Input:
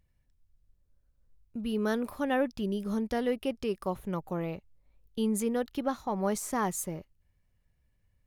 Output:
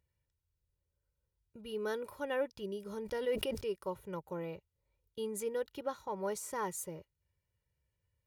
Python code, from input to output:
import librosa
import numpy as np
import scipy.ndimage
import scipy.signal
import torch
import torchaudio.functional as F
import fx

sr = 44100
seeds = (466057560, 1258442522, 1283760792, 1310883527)

y = scipy.signal.sosfilt(scipy.signal.butter(2, 80.0, 'highpass', fs=sr, output='sos'), x)
y = y + 0.7 * np.pad(y, (int(2.1 * sr / 1000.0), 0))[:len(y)]
y = fx.sustainer(y, sr, db_per_s=47.0, at=(2.98, 3.6), fade=0.02)
y = F.gain(torch.from_numpy(y), -8.0).numpy()